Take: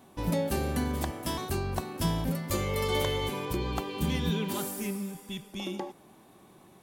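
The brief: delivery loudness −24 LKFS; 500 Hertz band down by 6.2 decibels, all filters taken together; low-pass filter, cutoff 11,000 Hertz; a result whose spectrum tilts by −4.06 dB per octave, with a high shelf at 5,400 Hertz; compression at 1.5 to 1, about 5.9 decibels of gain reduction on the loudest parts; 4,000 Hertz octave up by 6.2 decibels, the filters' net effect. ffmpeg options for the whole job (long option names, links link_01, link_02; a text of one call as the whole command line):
ffmpeg -i in.wav -af "lowpass=11000,equalizer=frequency=500:width_type=o:gain=-8,equalizer=frequency=4000:width_type=o:gain=5.5,highshelf=frequency=5400:gain=7.5,acompressor=threshold=-41dB:ratio=1.5,volume=12dB" out.wav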